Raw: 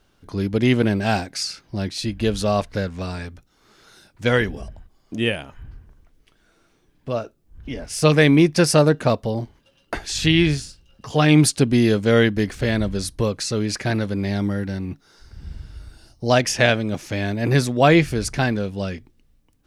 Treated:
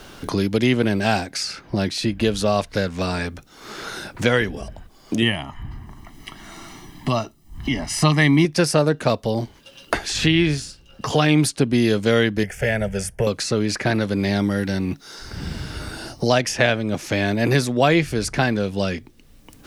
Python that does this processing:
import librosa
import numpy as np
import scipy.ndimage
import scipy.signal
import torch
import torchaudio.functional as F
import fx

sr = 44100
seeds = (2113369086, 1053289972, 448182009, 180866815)

y = fx.comb(x, sr, ms=1.0, depth=0.85, at=(5.22, 8.45))
y = fx.fixed_phaser(y, sr, hz=1100.0, stages=6, at=(12.43, 13.27))
y = fx.low_shelf(y, sr, hz=160.0, db=-4.5)
y = fx.band_squash(y, sr, depth_pct=70)
y = y * librosa.db_to_amplitude(1.0)